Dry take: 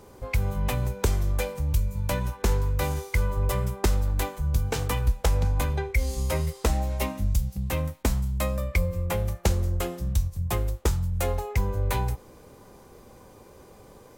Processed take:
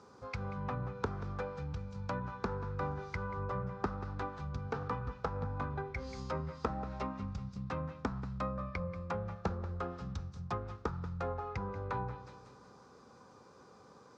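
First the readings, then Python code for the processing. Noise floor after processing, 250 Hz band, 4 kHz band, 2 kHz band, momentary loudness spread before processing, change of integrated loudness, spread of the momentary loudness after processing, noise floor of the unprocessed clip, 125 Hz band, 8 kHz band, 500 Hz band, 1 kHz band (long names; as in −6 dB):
−59 dBFS, −7.5 dB, −17.5 dB, −10.5 dB, 3 LU, −12.0 dB, 18 LU, −51 dBFS, −13.5 dB, −27.0 dB, −9.0 dB, −5.0 dB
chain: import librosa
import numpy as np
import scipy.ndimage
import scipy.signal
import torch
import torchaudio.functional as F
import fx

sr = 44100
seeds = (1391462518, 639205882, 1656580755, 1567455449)

y = fx.cabinet(x, sr, low_hz=140.0, low_slope=12, high_hz=6400.0, hz=(350.0, 610.0, 1300.0, 2100.0, 3000.0, 5100.0), db=(-6, -6, 9, -7, -7, 3))
y = fx.echo_feedback(y, sr, ms=184, feedback_pct=47, wet_db=-13.5)
y = fx.env_lowpass_down(y, sr, base_hz=1400.0, full_db=-27.0)
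y = F.gain(torch.from_numpy(y), -6.0).numpy()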